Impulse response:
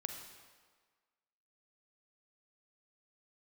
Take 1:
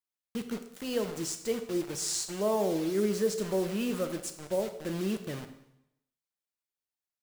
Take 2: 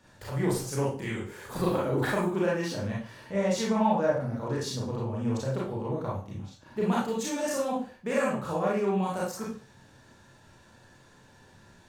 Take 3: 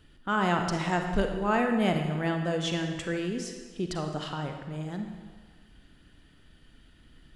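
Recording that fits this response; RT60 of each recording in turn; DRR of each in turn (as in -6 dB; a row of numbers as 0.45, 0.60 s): 3; 0.80, 0.40, 1.6 s; 7.0, -5.5, 4.5 dB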